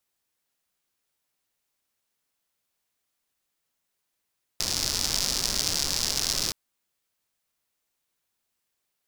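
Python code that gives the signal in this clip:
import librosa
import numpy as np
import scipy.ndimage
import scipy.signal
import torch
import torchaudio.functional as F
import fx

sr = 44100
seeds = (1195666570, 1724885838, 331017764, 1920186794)

y = fx.rain(sr, seeds[0], length_s=1.92, drops_per_s=160.0, hz=5100.0, bed_db=-7.0)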